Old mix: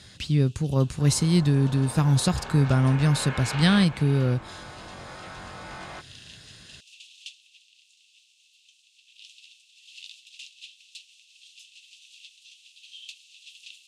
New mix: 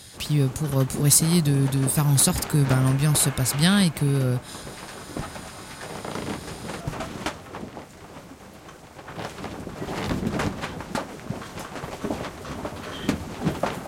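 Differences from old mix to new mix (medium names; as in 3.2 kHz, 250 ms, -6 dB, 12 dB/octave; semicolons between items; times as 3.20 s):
first sound: remove rippled Chebyshev high-pass 2.6 kHz, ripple 3 dB; second sound -5.0 dB; master: remove distance through air 93 m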